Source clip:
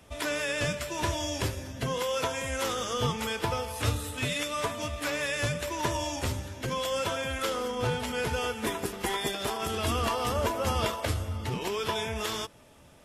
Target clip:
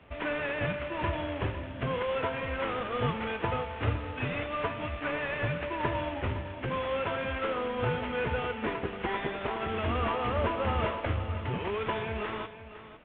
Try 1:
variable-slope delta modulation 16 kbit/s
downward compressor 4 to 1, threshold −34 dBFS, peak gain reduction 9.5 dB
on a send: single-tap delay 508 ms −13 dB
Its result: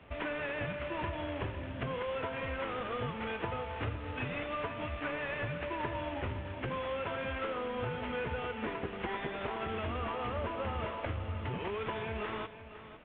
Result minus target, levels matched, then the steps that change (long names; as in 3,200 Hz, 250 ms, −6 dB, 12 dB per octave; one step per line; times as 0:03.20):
downward compressor: peak gain reduction +9.5 dB
remove: downward compressor 4 to 1, threshold −34 dBFS, peak gain reduction 9.5 dB